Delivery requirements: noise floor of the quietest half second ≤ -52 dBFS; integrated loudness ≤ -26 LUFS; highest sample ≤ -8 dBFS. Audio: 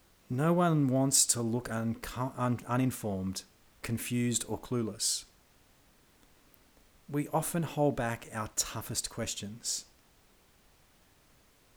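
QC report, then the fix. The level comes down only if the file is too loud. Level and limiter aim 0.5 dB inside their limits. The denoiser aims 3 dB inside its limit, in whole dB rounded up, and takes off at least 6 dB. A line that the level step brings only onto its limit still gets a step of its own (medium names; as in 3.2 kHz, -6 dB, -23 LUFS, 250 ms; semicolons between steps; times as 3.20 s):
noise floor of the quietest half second -64 dBFS: pass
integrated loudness -31.5 LUFS: pass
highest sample -11.0 dBFS: pass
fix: none needed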